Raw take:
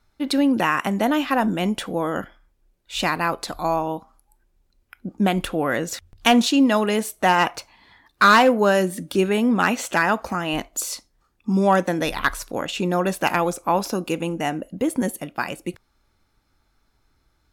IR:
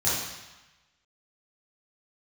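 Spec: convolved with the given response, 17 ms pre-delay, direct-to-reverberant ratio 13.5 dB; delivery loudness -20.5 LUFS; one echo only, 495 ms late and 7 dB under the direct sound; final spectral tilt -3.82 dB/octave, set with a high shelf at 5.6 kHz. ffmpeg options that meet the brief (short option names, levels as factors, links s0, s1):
-filter_complex "[0:a]highshelf=f=5600:g=-6.5,aecho=1:1:495:0.447,asplit=2[s0][s1];[1:a]atrim=start_sample=2205,adelay=17[s2];[s1][s2]afir=irnorm=-1:irlink=0,volume=0.0531[s3];[s0][s3]amix=inputs=2:normalize=0,volume=1.06"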